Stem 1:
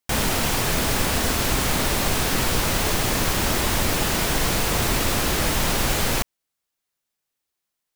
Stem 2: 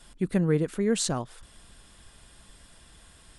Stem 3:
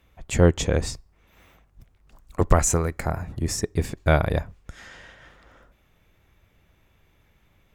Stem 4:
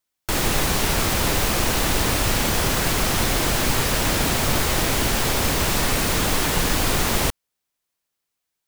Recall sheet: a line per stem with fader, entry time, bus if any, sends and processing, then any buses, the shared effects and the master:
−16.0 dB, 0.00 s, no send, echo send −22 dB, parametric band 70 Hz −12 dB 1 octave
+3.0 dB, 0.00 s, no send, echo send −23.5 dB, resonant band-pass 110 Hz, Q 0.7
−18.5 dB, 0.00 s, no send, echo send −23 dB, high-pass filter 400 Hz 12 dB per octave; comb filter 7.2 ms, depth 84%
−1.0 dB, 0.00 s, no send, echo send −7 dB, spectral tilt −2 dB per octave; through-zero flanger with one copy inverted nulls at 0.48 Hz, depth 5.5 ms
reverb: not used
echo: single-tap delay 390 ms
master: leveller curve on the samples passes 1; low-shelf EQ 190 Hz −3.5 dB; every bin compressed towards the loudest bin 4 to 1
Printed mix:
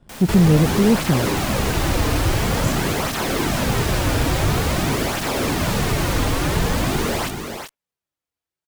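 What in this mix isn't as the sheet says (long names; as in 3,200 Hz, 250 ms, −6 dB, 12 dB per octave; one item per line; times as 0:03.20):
stem 2 +3.0 dB → +13.0 dB
master: missing every bin compressed towards the loudest bin 4 to 1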